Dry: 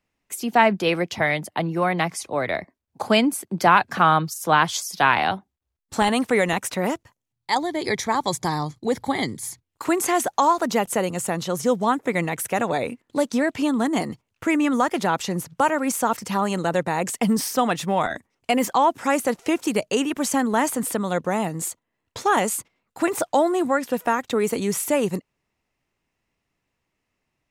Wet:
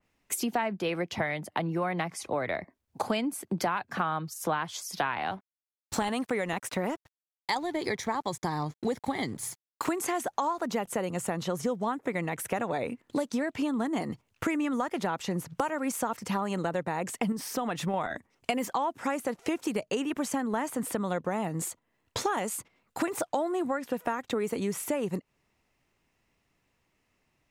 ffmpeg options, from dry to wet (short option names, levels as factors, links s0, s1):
-filter_complex "[0:a]asettb=1/sr,asplit=3[s0][s1][s2];[s0]atrim=end=5.274[s3];[s1]atrim=start=5.27:end=9.94,asetpts=PTS-STARTPTS,afade=t=in:d=0.004:c=qsin,afade=t=out:st=4.666:d=0.004:c=qsin,aeval=exprs='sgn(val(0))*max(abs(val(0))-0.00422,0)':c=same[s4];[s2]atrim=start=9.936[s5];[s3][s4]acrossfade=d=0.004:c1=hsin:c2=qsin[s6];[s6][s5]acrossfade=d=0.004:c1=qsin:c2=hsin,asettb=1/sr,asplit=3[s7][s8][s9];[s7]atrim=end=17.324[s10];[s8]atrim=start=17.32:end=17.94,asetpts=PTS-STARTPTS,afade=t=in:d=0.004:c=qsin,afade=t=out:st=0.616:d=0.004:c=qsin,acompressor=threshold=0.0501:ratio=2:attack=3.2:release=140:knee=1:detection=peak[s11];[s9]atrim=start=17.936[s12];[s10][s11]acrossfade=d=0.004:c1=hsin:c2=qsin[s13];[s13][s12]acrossfade=d=0.004:c1=qsin:c2=hsin,acompressor=threshold=0.0282:ratio=6,adynamicequalizer=threshold=0.00251:dfrequency=3100:dqfactor=0.7:tfrequency=3100:tqfactor=0.7:attack=5:release=100:ratio=0.375:range=3:mode=cutabove:tftype=highshelf,volume=1.5"